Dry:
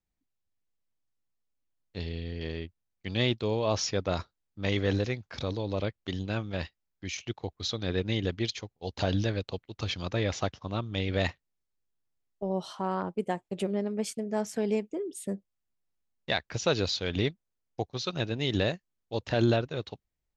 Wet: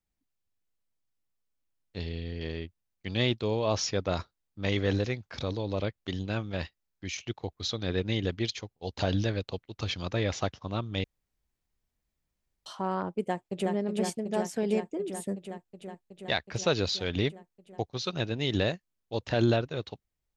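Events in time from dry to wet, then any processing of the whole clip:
11.04–12.66 room tone
13.22–13.72 echo throw 0.37 s, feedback 80%, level -3.5 dB

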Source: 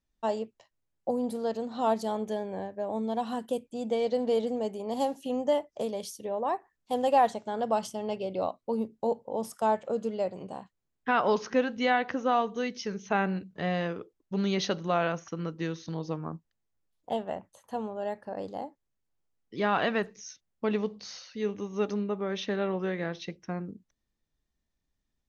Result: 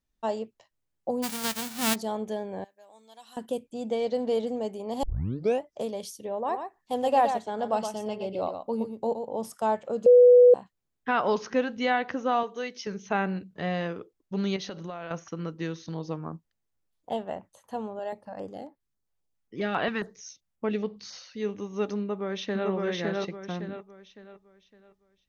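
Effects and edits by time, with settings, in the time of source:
1.22–1.94 spectral whitening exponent 0.1
2.64–3.37 differentiator
5.03 tape start 0.60 s
6.36–9.4 echo 0.119 s -7.5 dB
10.06–10.54 bleep 492 Hz -11 dBFS
12.43–12.87 tone controls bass -14 dB, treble -1 dB
14.56–15.11 compressor 8:1, threshold -33 dBFS
17.99–21.13 stepped notch 7.4 Hz 240–6600 Hz
21.99–22.68 echo throw 0.56 s, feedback 35%, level -0.5 dB

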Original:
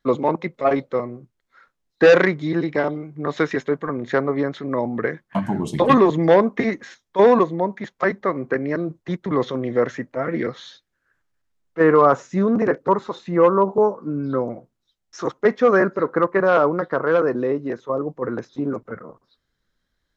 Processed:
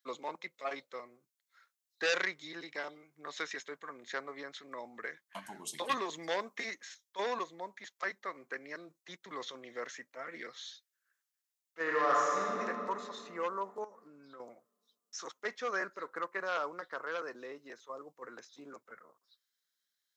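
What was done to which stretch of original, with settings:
6.09–6.75 high shelf 5400 Hz +5.5 dB
11.81–12.61 reverb throw, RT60 2.7 s, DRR -4.5 dB
13.84–14.4 compressor 10:1, threshold -25 dBFS
whole clip: HPF 120 Hz; differentiator

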